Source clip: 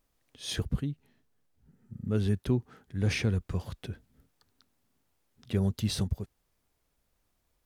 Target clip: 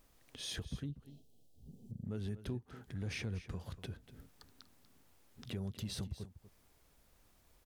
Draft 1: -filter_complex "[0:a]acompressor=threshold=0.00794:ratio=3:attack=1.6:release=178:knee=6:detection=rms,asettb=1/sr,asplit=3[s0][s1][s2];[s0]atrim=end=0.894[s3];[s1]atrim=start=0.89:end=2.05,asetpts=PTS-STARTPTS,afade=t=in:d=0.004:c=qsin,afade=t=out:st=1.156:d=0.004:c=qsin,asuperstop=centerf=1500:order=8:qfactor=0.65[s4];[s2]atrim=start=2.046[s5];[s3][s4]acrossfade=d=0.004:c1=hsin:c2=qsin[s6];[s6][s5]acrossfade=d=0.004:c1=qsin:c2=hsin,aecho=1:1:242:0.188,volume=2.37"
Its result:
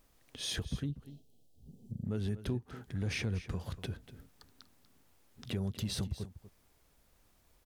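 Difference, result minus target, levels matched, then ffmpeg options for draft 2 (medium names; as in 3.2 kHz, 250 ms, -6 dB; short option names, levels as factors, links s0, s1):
compression: peak gain reduction -5.5 dB
-filter_complex "[0:a]acompressor=threshold=0.00316:ratio=3:attack=1.6:release=178:knee=6:detection=rms,asettb=1/sr,asplit=3[s0][s1][s2];[s0]atrim=end=0.894[s3];[s1]atrim=start=0.89:end=2.05,asetpts=PTS-STARTPTS,afade=t=in:d=0.004:c=qsin,afade=t=out:st=1.156:d=0.004:c=qsin,asuperstop=centerf=1500:order=8:qfactor=0.65[s4];[s2]atrim=start=2.046[s5];[s3][s4]acrossfade=d=0.004:c1=hsin:c2=qsin[s6];[s6][s5]acrossfade=d=0.004:c1=qsin:c2=hsin,aecho=1:1:242:0.188,volume=2.37"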